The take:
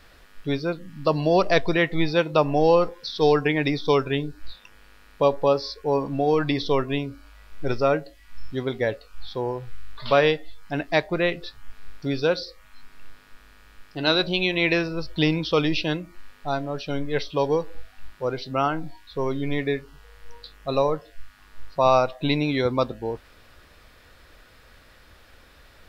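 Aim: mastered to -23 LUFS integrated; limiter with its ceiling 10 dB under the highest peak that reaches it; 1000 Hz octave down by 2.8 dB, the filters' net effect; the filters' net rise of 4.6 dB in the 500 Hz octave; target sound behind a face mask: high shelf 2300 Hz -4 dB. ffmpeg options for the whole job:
-af "equalizer=f=500:t=o:g=7,equalizer=f=1k:t=o:g=-6.5,alimiter=limit=-13dB:level=0:latency=1,highshelf=f=2.3k:g=-4,volume=2dB"

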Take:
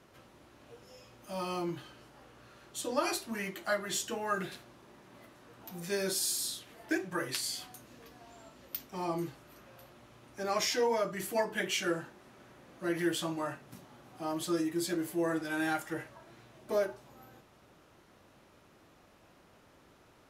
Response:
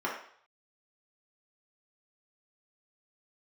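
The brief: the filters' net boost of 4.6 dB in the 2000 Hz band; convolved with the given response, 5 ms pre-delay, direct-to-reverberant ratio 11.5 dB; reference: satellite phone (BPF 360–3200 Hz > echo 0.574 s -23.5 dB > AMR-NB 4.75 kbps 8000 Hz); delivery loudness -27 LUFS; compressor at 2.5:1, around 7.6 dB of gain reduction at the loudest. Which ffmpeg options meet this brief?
-filter_complex "[0:a]equalizer=f=2k:t=o:g=6.5,acompressor=threshold=-36dB:ratio=2.5,asplit=2[a][b];[1:a]atrim=start_sample=2205,adelay=5[c];[b][c]afir=irnorm=-1:irlink=0,volume=-20dB[d];[a][d]amix=inputs=2:normalize=0,highpass=360,lowpass=3.2k,aecho=1:1:574:0.0668,volume=15.5dB" -ar 8000 -c:a libopencore_amrnb -b:a 4750

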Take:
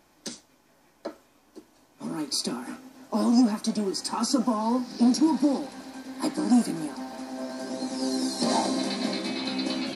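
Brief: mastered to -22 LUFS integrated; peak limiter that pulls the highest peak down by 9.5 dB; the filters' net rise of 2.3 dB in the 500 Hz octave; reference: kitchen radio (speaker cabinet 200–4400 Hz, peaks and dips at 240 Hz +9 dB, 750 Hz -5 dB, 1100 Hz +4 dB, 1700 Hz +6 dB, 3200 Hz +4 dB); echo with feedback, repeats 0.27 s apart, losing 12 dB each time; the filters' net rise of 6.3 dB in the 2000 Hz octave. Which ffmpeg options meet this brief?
-af "equalizer=f=500:t=o:g=3.5,equalizer=f=2k:t=o:g=3,alimiter=limit=-19.5dB:level=0:latency=1,highpass=200,equalizer=f=240:t=q:w=4:g=9,equalizer=f=750:t=q:w=4:g=-5,equalizer=f=1.1k:t=q:w=4:g=4,equalizer=f=1.7k:t=q:w=4:g=6,equalizer=f=3.2k:t=q:w=4:g=4,lowpass=f=4.4k:w=0.5412,lowpass=f=4.4k:w=1.3066,aecho=1:1:270|540|810:0.251|0.0628|0.0157,volume=4dB"

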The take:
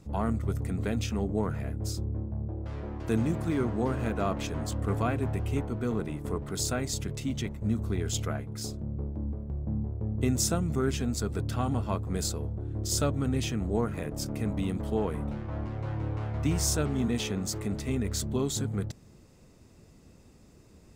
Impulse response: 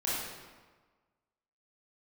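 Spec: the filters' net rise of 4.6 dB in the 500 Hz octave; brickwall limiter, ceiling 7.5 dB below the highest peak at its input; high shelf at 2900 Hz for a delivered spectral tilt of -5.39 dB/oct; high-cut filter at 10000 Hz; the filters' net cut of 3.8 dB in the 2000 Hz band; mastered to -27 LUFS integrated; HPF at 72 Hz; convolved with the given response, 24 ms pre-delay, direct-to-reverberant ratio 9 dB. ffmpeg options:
-filter_complex "[0:a]highpass=72,lowpass=10k,equalizer=f=500:t=o:g=6,equalizer=f=2k:t=o:g=-7.5,highshelf=f=2.9k:g=4,alimiter=limit=-20.5dB:level=0:latency=1,asplit=2[a][b];[1:a]atrim=start_sample=2205,adelay=24[c];[b][c]afir=irnorm=-1:irlink=0,volume=-16dB[d];[a][d]amix=inputs=2:normalize=0,volume=4.5dB"

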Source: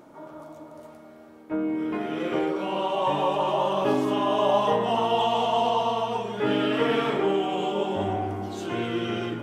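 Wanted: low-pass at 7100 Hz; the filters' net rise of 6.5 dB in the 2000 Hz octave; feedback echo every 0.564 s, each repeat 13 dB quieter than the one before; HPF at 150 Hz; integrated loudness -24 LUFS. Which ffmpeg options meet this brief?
-af "highpass=150,lowpass=7.1k,equalizer=f=2k:t=o:g=8.5,aecho=1:1:564|1128|1692:0.224|0.0493|0.0108"

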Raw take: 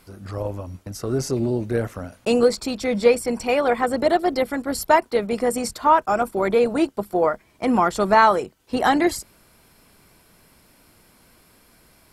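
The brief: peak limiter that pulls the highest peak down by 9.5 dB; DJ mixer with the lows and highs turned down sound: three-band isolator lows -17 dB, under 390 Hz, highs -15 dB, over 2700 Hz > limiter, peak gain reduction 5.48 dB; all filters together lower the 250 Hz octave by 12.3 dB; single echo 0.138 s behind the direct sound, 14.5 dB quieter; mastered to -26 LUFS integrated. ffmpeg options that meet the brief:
-filter_complex "[0:a]equalizer=f=250:t=o:g=-4,alimiter=limit=-12.5dB:level=0:latency=1,acrossover=split=390 2700:gain=0.141 1 0.178[a][b][c];[a][b][c]amix=inputs=3:normalize=0,aecho=1:1:138:0.188,volume=3dB,alimiter=limit=-14.5dB:level=0:latency=1"

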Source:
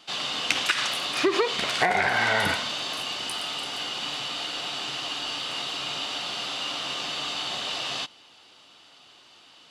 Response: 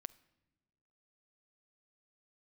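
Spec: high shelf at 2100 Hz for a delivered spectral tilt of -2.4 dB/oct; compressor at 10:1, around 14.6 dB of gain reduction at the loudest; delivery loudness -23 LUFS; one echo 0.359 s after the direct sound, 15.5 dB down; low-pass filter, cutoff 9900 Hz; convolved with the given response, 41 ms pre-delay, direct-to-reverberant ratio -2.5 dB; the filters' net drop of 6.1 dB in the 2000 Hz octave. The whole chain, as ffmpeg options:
-filter_complex "[0:a]lowpass=9.9k,equalizer=f=2k:t=o:g=-3.5,highshelf=f=2.1k:g=-8,acompressor=threshold=-35dB:ratio=10,aecho=1:1:359:0.168,asplit=2[a][b];[1:a]atrim=start_sample=2205,adelay=41[c];[b][c]afir=irnorm=-1:irlink=0,volume=7.5dB[d];[a][d]amix=inputs=2:normalize=0,volume=10.5dB"

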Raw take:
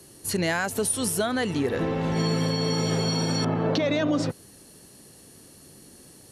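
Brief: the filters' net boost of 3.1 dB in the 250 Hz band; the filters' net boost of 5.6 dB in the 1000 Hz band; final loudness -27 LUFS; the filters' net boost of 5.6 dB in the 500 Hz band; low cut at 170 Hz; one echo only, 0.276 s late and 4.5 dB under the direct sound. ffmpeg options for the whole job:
-af "highpass=170,equalizer=f=250:t=o:g=4,equalizer=f=500:t=o:g=4.5,equalizer=f=1k:t=o:g=5.5,aecho=1:1:276:0.596,volume=-5.5dB"

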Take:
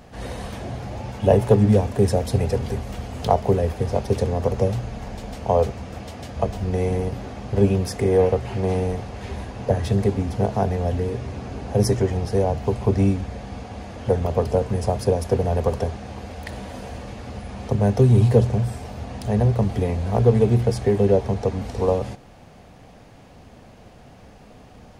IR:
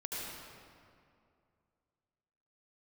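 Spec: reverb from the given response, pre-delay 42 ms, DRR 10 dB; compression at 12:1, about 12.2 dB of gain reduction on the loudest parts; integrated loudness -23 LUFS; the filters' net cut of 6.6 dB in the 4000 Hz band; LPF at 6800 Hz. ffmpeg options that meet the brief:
-filter_complex "[0:a]lowpass=6.8k,equalizer=f=4k:t=o:g=-8.5,acompressor=threshold=-23dB:ratio=12,asplit=2[a][b];[1:a]atrim=start_sample=2205,adelay=42[c];[b][c]afir=irnorm=-1:irlink=0,volume=-12.5dB[d];[a][d]amix=inputs=2:normalize=0,volume=6.5dB"

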